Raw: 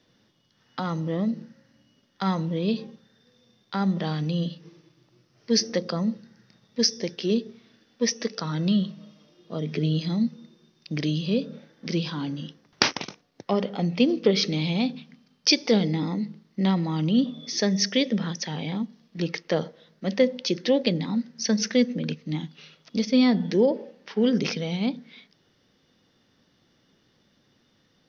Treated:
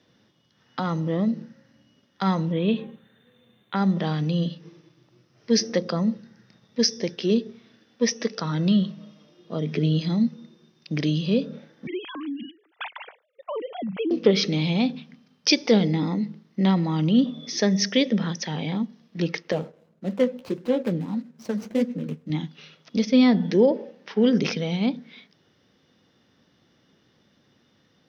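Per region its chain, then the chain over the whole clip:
2.52–3.76 s: Butterworth band-stop 5.2 kHz, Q 1.1 + treble shelf 2.8 kHz +7.5 dB
11.87–14.11 s: formants replaced by sine waves + compression 2:1, threshold -35 dBFS
19.52–22.30 s: median filter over 25 samples + flange 1.7 Hz, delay 3.6 ms, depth 9.8 ms, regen -37%
whole clip: high-pass 59 Hz; treble shelf 4.7 kHz -4.5 dB; band-stop 4.5 kHz, Q 20; trim +2.5 dB

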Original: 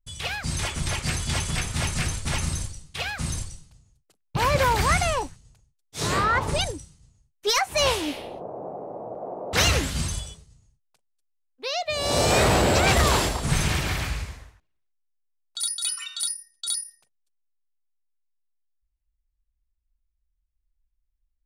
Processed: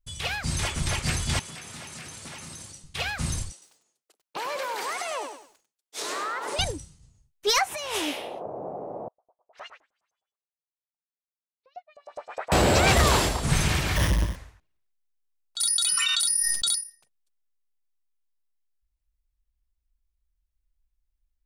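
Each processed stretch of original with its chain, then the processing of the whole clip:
1.39–2.84 s: high-pass 190 Hz + compression 10:1, threshold -37 dBFS
3.52–6.59 s: high-pass 340 Hz 24 dB/octave + compression 12:1, threshold -28 dBFS + bit-crushed delay 98 ms, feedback 35%, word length 10-bit, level -6.5 dB
7.66–8.46 s: high-pass 540 Hz 6 dB/octave + peaking EQ 4.4 kHz -6 dB 0.23 oct + compressor with a negative ratio -30 dBFS
9.08–12.52 s: three-band isolator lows -20 dB, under 440 Hz, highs -15 dB, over 2.2 kHz + LFO band-pass saw up 9.7 Hz 530–7700 Hz + upward expansion 2.5:1, over -49 dBFS
13.96–14.36 s: square wave that keeps the level + rippled EQ curve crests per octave 1.2, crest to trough 9 dB
15.60–16.75 s: peaking EQ 150 Hz +11 dB 0.99 oct + level flattener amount 100%
whole clip: none

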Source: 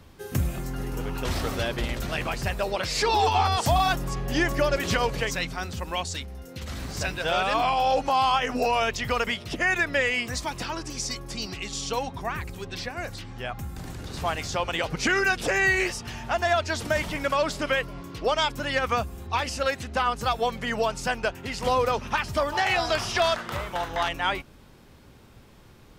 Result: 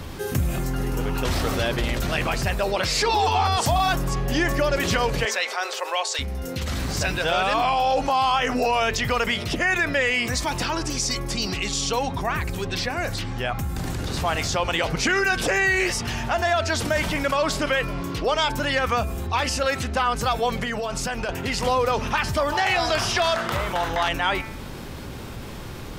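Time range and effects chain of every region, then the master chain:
5.25–6.19 s: steep high-pass 410 Hz 48 dB/octave + treble shelf 9.7 kHz -10.5 dB
20.63–21.29 s: band-stop 930 Hz, Q 29 + compression, threshold -32 dBFS
whole clip: de-hum 221 Hz, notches 11; level flattener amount 50%

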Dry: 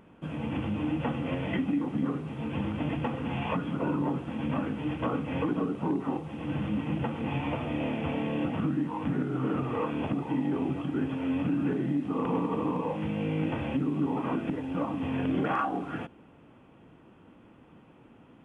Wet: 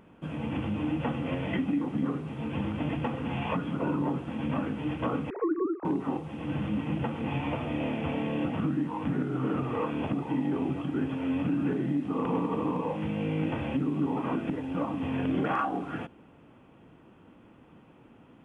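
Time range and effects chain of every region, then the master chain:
5.30–5.85 s: formants replaced by sine waves + steep low-pass 1.7 kHz
whole clip: none

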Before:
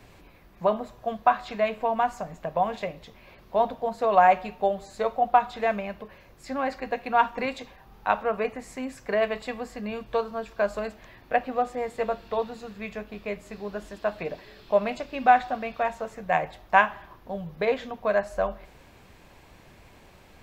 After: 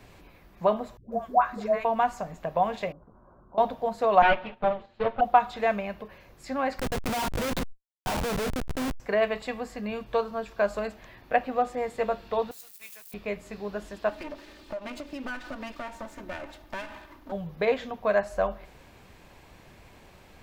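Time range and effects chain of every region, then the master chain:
0.97–1.85 s: peaking EQ 3.2 kHz -12.5 dB 1 oct + phase dispersion highs, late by 150 ms, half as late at 550 Hz
2.92–3.58 s: compression 2:1, threshold -46 dBFS + rippled Chebyshev low-pass 1.5 kHz, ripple 3 dB + peaking EQ 450 Hz -7.5 dB 0.35 oct
4.22–5.21 s: comb filter that takes the minimum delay 8.7 ms + gate -45 dBFS, range -8 dB + Chebyshev low-pass 3.2 kHz, order 3
6.79–9.00 s: Schmitt trigger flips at -35.5 dBFS + decay stretcher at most 51 dB/s
12.51–13.14 s: zero-crossing glitches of -39 dBFS + differentiator + companded quantiser 4-bit
14.09–17.32 s: comb filter that takes the minimum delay 3.3 ms + peaking EQ 290 Hz +9.5 dB 0.27 oct + compression 4:1, threshold -34 dBFS
whole clip: none

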